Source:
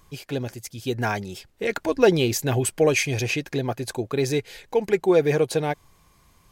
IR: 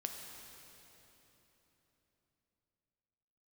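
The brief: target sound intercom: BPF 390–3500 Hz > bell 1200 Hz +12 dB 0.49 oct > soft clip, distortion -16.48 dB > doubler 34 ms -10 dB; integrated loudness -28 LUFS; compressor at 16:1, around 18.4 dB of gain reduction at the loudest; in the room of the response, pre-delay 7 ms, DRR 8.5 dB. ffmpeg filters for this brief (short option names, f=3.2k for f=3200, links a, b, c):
-filter_complex "[0:a]acompressor=threshold=-30dB:ratio=16,asplit=2[a][b];[1:a]atrim=start_sample=2205,adelay=7[c];[b][c]afir=irnorm=-1:irlink=0,volume=-8dB[d];[a][d]amix=inputs=2:normalize=0,highpass=390,lowpass=3.5k,equalizer=f=1.2k:t=o:w=0.49:g=12,asoftclip=threshold=-25.5dB,asplit=2[e][f];[f]adelay=34,volume=-10dB[g];[e][g]amix=inputs=2:normalize=0,volume=9.5dB"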